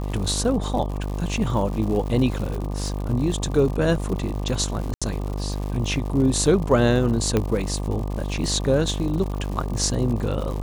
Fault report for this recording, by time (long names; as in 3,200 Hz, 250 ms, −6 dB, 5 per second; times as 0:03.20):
mains buzz 50 Hz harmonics 24 −27 dBFS
surface crackle 150 per second −30 dBFS
0:04.94–0:05.02: drop-out 76 ms
0:07.37: click −8 dBFS